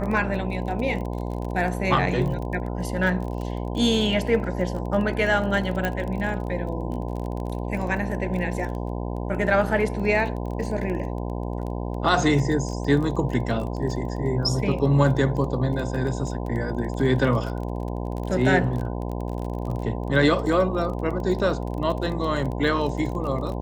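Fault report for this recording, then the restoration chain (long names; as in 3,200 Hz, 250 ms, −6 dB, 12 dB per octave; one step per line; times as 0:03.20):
mains buzz 60 Hz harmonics 17 −29 dBFS
surface crackle 24 per second −30 dBFS
0:05.85: click −11 dBFS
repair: click removal
hum removal 60 Hz, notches 17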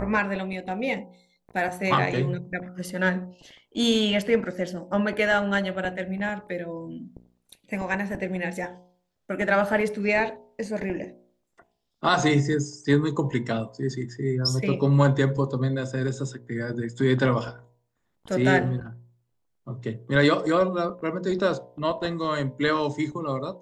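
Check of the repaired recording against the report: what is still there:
none of them is left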